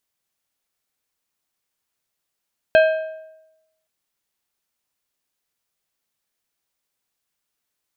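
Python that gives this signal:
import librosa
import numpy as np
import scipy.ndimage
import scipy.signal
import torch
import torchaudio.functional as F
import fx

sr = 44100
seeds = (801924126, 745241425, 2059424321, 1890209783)

y = fx.strike_metal(sr, length_s=1.12, level_db=-8, body='plate', hz=635.0, decay_s=0.94, tilt_db=7, modes=5)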